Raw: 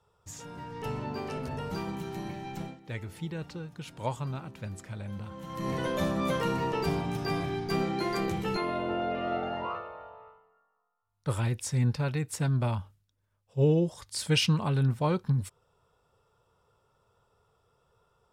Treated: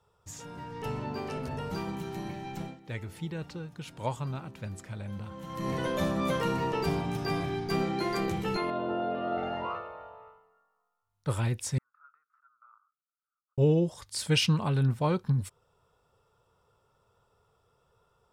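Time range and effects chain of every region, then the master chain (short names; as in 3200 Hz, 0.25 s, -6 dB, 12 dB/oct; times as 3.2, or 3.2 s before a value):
8.7–9.38 BPF 120–3700 Hz + bell 2200 Hz -14 dB 0.37 oct
11.78–13.58 auto swell 0.219 s + compressor, threshold -35 dBFS + Butterworth band-pass 1300 Hz, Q 6.8
whole clip: dry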